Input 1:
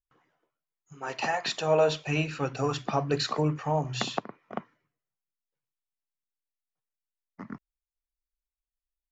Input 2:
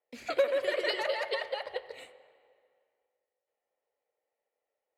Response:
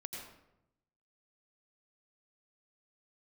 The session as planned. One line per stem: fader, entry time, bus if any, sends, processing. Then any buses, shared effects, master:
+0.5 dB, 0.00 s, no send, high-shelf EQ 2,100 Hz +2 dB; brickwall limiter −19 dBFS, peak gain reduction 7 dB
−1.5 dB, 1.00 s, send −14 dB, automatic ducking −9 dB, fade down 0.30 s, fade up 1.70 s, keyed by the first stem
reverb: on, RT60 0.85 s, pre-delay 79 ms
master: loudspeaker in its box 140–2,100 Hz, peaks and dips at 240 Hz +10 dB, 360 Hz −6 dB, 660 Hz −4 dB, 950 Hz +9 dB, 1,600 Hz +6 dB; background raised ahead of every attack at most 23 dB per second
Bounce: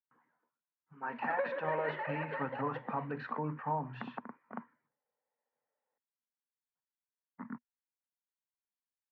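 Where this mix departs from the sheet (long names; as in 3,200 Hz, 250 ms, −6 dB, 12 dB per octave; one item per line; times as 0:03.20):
stem 1 +0.5 dB → −8.0 dB
master: missing background raised ahead of every attack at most 23 dB per second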